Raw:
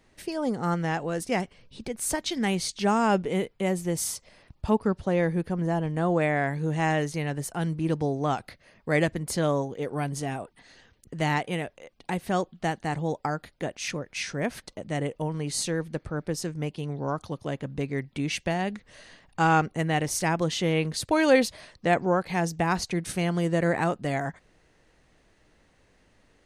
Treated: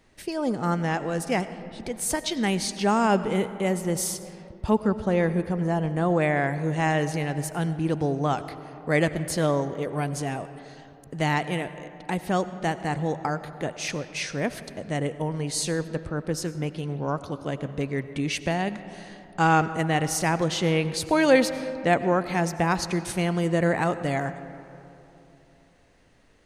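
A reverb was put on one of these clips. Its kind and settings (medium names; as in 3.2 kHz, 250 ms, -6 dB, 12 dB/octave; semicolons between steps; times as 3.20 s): algorithmic reverb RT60 3.1 s, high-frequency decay 0.4×, pre-delay 55 ms, DRR 12.5 dB; trim +1.5 dB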